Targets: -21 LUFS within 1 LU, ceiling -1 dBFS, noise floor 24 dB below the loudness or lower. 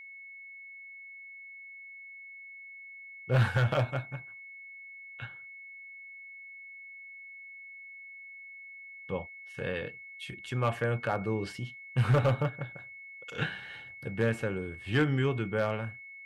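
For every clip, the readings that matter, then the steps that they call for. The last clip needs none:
clipped 0.2%; flat tops at -18.5 dBFS; steady tone 2200 Hz; tone level -45 dBFS; loudness -32.0 LUFS; peak -18.5 dBFS; loudness target -21.0 LUFS
-> clip repair -18.5 dBFS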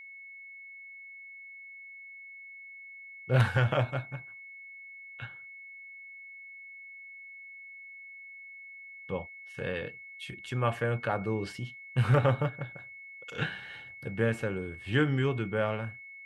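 clipped 0.0%; steady tone 2200 Hz; tone level -45 dBFS
-> notch 2200 Hz, Q 30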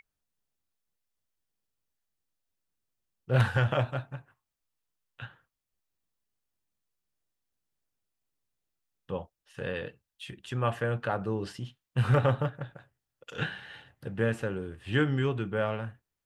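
steady tone none; loudness -30.5 LUFS; peak -9.5 dBFS; loudness target -21.0 LUFS
-> gain +9.5 dB; limiter -1 dBFS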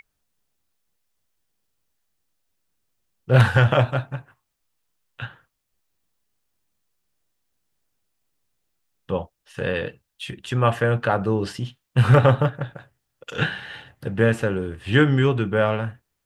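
loudness -21.0 LUFS; peak -1.0 dBFS; noise floor -78 dBFS

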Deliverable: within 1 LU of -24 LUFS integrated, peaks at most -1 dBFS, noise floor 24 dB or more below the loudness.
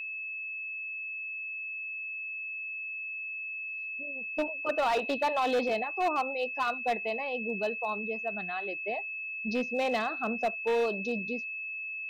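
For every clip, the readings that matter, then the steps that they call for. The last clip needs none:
clipped 1.3%; flat tops at -23.0 dBFS; steady tone 2600 Hz; tone level -35 dBFS; loudness -32.0 LUFS; peak -23.0 dBFS; loudness target -24.0 LUFS
-> clip repair -23 dBFS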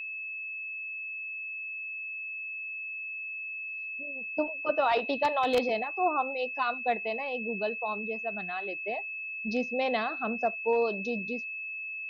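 clipped 0.0%; steady tone 2600 Hz; tone level -35 dBFS
-> notch 2600 Hz, Q 30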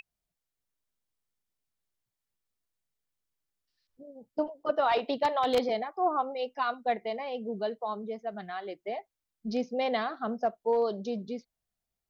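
steady tone none; loudness -31.5 LUFS; peak -13.5 dBFS; loudness target -24.0 LUFS
-> gain +7.5 dB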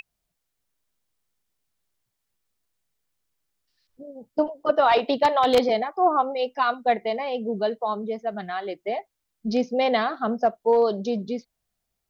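loudness -24.0 LUFS; peak -6.0 dBFS; noise floor -80 dBFS

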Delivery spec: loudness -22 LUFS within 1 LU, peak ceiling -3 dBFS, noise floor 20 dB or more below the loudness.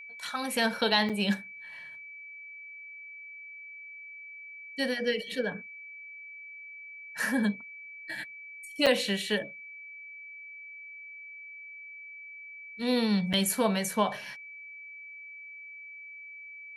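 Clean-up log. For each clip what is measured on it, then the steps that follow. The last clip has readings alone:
dropouts 3; longest dropout 6.4 ms; steady tone 2300 Hz; tone level -43 dBFS; loudness -29.5 LUFS; peak -11.0 dBFS; loudness target -22.0 LUFS
-> interpolate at 1.09/8.86/13.33, 6.4 ms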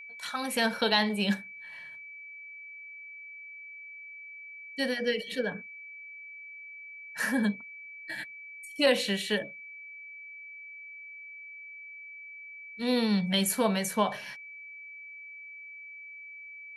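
dropouts 0; steady tone 2300 Hz; tone level -43 dBFS
-> notch 2300 Hz, Q 30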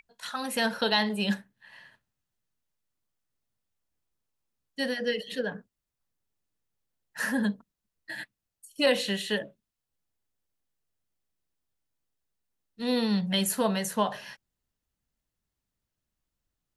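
steady tone none; loudness -29.0 LUFS; peak -11.0 dBFS; loudness target -22.0 LUFS
-> gain +7 dB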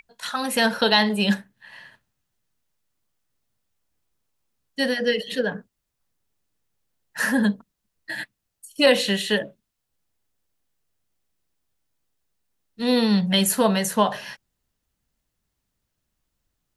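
loudness -22.0 LUFS; peak -4.0 dBFS; noise floor -79 dBFS

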